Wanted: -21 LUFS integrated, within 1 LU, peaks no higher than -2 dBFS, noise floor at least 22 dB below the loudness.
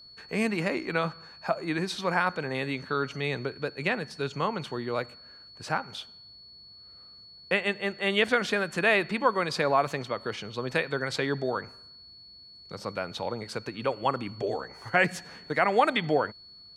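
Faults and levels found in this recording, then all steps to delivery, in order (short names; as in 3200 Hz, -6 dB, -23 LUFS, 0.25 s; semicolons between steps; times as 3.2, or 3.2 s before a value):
steady tone 4400 Hz; tone level -48 dBFS; loudness -29.0 LUFS; peak -8.0 dBFS; loudness target -21.0 LUFS
-> notch 4400 Hz, Q 30; gain +8 dB; limiter -2 dBFS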